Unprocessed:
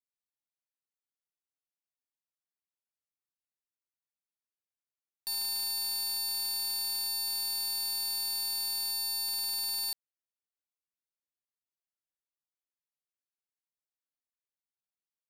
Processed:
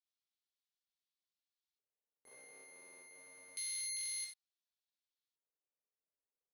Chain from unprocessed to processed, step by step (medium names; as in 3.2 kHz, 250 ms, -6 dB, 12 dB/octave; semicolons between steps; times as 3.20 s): gated-style reverb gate 230 ms flat, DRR -3 dB; speed mistake 33 rpm record played at 78 rpm; LFO band-pass square 0.28 Hz 480–3900 Hz; trim +5 dB